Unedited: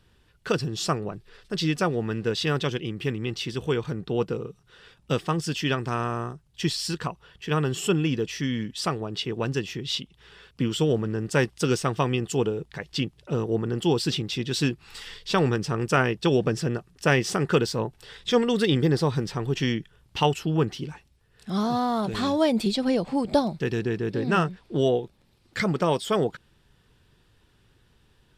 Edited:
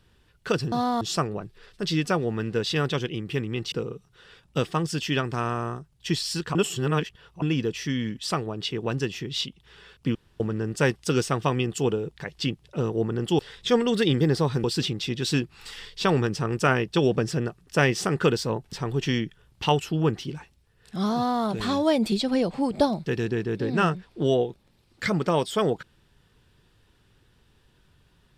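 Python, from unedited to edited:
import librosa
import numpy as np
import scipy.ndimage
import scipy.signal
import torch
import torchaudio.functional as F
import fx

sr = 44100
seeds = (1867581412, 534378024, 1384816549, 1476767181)

y = fx.edit(x, sr, fx.cut(start_s=3.43, length_s=0.83),
    fx.reverse_span(start_s=7.09, length_s=0.87),
    fx.room_tone_fill(start_s=10.69, length_s=0.25),
    fx.move(start_s=18.01, length_s=1.25, to_s=13.93),
    fx.duplicate(start_s=21.68, length_s=0.29, to_s=0.72), tone=tone)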